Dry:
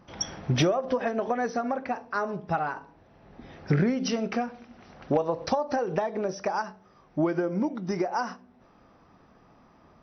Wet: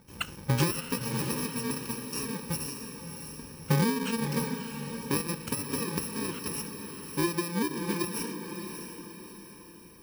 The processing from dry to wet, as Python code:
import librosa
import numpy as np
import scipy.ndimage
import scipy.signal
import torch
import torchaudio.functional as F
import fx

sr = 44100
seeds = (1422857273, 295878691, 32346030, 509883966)

y = fx.bit_reversed(x, sr, seeds[0], block=64)
y = fx.high_shelf(y, sr, hz=5300.0, db=-8.5)
y = fx.echo_diffused(y, sr, ms=629, feedback_pct=44, wet_db=-7.0)
y = fx.doppler_dist(y, sr, depth_ms=0.15)